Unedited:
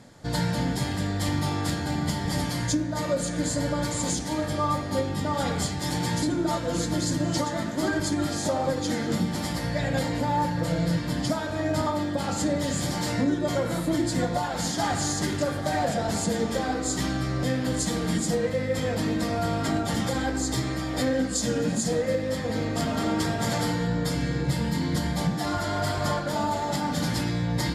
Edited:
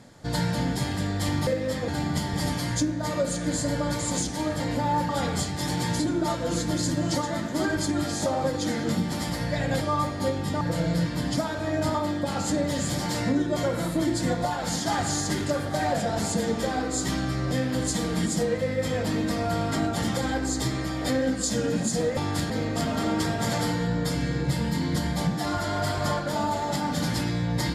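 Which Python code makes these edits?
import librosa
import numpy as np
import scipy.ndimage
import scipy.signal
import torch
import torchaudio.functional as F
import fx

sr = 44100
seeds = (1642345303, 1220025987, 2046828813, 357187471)

y = fx.edit(x, sr, fx.swap(start_s=1.47, length_s=0.33, other_s=22.09, other_length_s=0.41),
    fx.swap(start_s=4.52, length_s=0.8, other_s=10.04, other_length_s=0.49), tone=tone)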